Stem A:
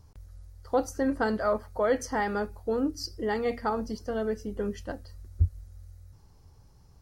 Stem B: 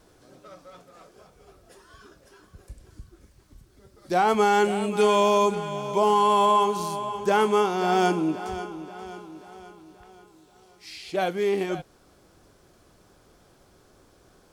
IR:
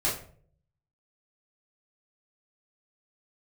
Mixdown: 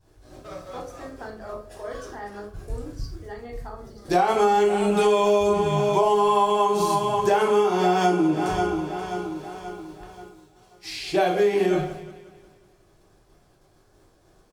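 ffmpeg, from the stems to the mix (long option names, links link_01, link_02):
-filter_complex "[0:a]volume=-15dB,asplit=2[link_01][link_02];[link_02]volume=-6dB[link_03];[1:a]agate=range=-33dB:threshold=-48dB:ratio=3:detection=peak,volume=2.5dB,asplit=3[link_04][link_05][link_06];[link_05]volume=-5.5dB[link_07];[link_06]volume=-13dB[link_08];[2:a]atrim=start_sample=2205[link_09];[link_03][link_07]amix=inputs=2:normalize=0[link_10];[link_10][link_09]afir=irnorm=-1:irlink=0[link_11];[link_08]aecho=0:1:184|368|552|736|920|1104|1288|1472:1|0.52|0.27|0.141|0.0731|0.038|0.0198|0.0103[link_12];[link_01][link_04][link_11][link_12]amix=inputs=4:normalize=0,acompressor=threshold=-17dB:ratio=6"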